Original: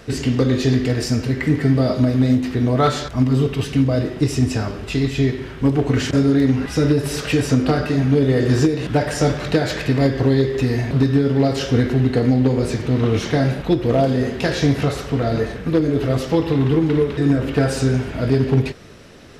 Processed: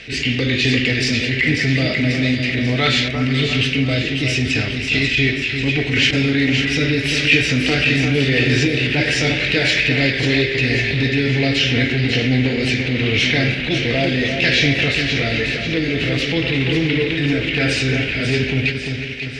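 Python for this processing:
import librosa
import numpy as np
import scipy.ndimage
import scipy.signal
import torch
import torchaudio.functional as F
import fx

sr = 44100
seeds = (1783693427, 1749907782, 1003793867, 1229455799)

p1 = scipy.signal.sosfilt(scipy.signal.butter(2, 3800.0, 'lowpass', fs=sr, output='sos'), x)
p2 = fx.high_shelf_res(p1, sr, hz=1600.0, db=13.0, q=3.0)
p3 = p2 + fx.echo_split(p2, sr, split_hz=1700.0, low_ms=346, high_ms=541, feedback_pct=52, wet_db=-6.5, dry=0)
p4 = fx.transient(p3, sr, attack_db=-8, sustain_db=-1)
y = p4 * librosa.db_to_amplitude(-1.5)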